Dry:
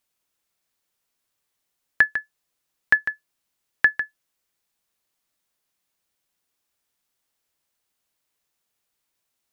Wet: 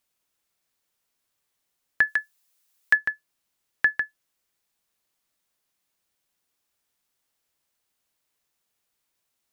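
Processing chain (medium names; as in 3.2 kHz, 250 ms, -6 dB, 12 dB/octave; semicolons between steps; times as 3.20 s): peak limiter -9 dBFS, peak gain reduction 4.5 dB; 2.07–2.95 s: tilt EQ +2.5 dB/octave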